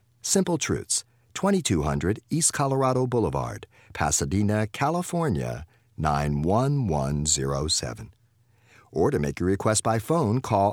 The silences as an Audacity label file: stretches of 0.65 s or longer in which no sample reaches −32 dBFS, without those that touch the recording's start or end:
8.020000	8.960000	silence